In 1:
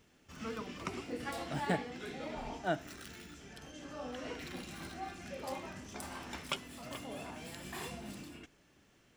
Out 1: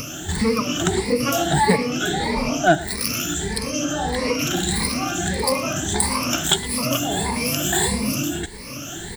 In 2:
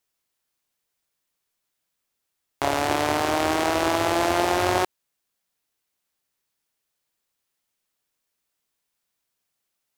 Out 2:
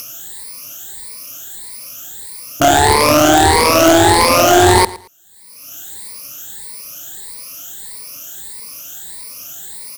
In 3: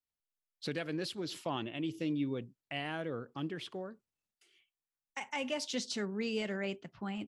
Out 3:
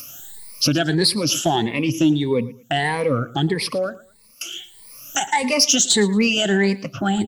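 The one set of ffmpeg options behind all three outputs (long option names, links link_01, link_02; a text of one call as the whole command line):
ffmpeg -i in.wav -filter_complex "[0:a]afftfilt=real='re*pow(10,20/40*sin(2*PI*(0.91*log(max(b,1)*sr/1024/100)/log(2)-(1.6)*(pts-256)/sr)))':imag='im*pow(10,20/40*sin(2*PI*(0.91*log(max(b,1)*sr/1024/100)/log(2)-(1.6)*(pts-256)/sr)))':win_size=1024:overlap=0.75,highshelf=frequency=2400:gain=-2.5,asplit=2[link_01][link_02];[link_02]acompressor=mode=upward:threshold=-22dB:ratio=2.5,volume=0dB[link_03];[link_01][link_03]amix=inputs=2:normalize=0,bass=frequency=250:gain=3,treble=frequency=4000:gain=11,acontrast=86,asplit=2[link_04][link_05];[link_05]aecho=0:1:113|226:0.112|0.0281[link_06];[link_04][link_06]amix=inputs=2:normalize=0,volume=-2dB" out.wav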